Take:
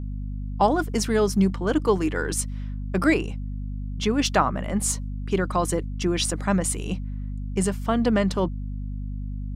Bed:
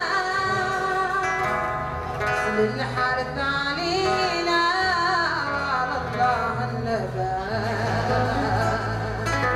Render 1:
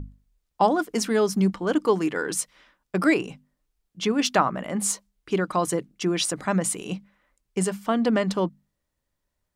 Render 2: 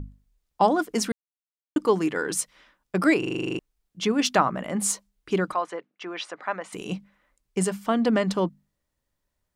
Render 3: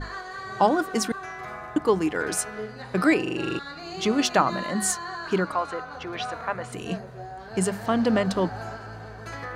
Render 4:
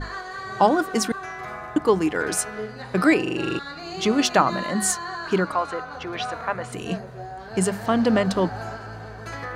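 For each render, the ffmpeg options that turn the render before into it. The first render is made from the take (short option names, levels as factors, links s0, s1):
-af "bandreject=f=50:t=h:w=6,bandreject=f=100:t=h:w=6,bandreject=f=150:t=h:w=6,bandreject=f=200:t=h:w=6,bandreject=f=250:t=h:w=6"
-filter_complex "[0:a]asplit=3[s0][s1][s2];[s0]afade=t=out:st=5.53:d=0.02[s3];[s1]highpass=660,lowpass=2400,afade=t=in:st=5.53:d=0.02,afade=t=out:st=6.72:d=0.02[s4];[s2]afade=t=in:st=6.72:d=0.02[s5];[s3][s4][s5]amix=inputs=3:normalize=0,asplit=13[s6][s7][s8][s9][s10][s11][s12][s13][s14][s15][s16][s17][s18];[s6]atrim=end=1.12,asetpts=PTS-STARTPTS,afade=t=out:st=1.116:d=0.004:c=hsin[s19];[s7]atrim=start=1.12:end=1.76,asetpts=PTS-STARTPTS,volume=0[s20];[s8]atrim=start=1.76:end=3.232,asetpts=PTS-STARTPTS,afade=t=in:d=0.004:c=hsin[s21];[s9]atrim=start=3.188:end=3.232[s22];[s10]atrim=start=3.188:end=3.232[s23];[s11]atrim=start=3.188:end=3.232[s24];[s12]atrim=start=3.188:end=3.232[s25];[s13]atrim=start=3.188:end=3.232[s26];[s14]atrim=start=3.188:end=3.232[s27];[s15]atrim=start=3.188:end=3.232[s28];[s16]atrim=start=3.188:end=3.232[s29];[s17]atrim=start=3.188:end=3.232[s30];[s18]atrim=start=3.588[s31];[s19][s20][s21]concat=n=3:v=0:a=1[s32];[s32][s22]acrossfade=d=0.004:c1=hsin:c2=hsin[s33];[s33][s23]acrossfade=d=0.004:c1=hsin:c2=hsin[s34];[s34][s24]acrossfade=d=0.004:c1=hsin:c2=hsin[s35];[s35][s25]acrossfade=d=0.004:c1=hsin:c2=hsin[s36];[s36][s26]acrossfade=d=0.004:c1=hsin:c2=hsin[s37];[s37][s27]acrossfade=d=0.004:c1=hsin:c2=hsin[s38];[s38][s28]acrossfade=d=0.004:c1=hsin:c2=hsin[s39];[s39][s29]acrossfade=d=0.004:c1=hsin:c2=hsin[s40];[s40][s30]acrossfade=d=0.004:c1=hsin:c2=hsin[s41];[s41][s31]acrossfade=d=0.004:c1=hsin:c2=hsin"
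-filter_complex "[1:a]volume=0.224[s0];[0:a][s0]amix=inputs=2:normalize=0"
-af "volume=1.33"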